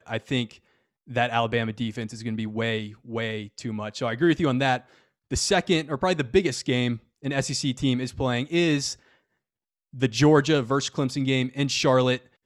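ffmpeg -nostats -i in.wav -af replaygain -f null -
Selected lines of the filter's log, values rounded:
track_gain = +4.2 dB
track_peak = 0.325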